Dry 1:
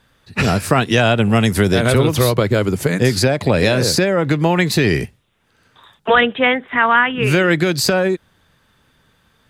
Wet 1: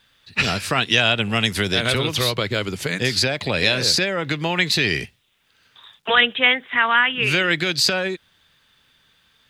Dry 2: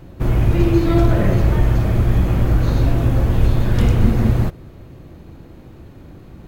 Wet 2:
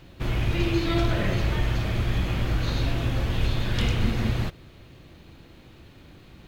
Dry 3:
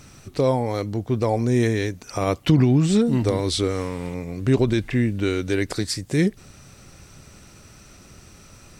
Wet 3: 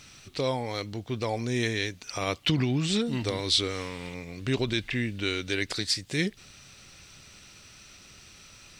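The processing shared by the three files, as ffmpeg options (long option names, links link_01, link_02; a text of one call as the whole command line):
ffmpeg -i in.wav -af "equalizer=frequency=3400:width_type=o:width=2.2:gain=14.5,acrusher=bits=9:mix=0:aa=0.000001,volume=-10dB" out.wav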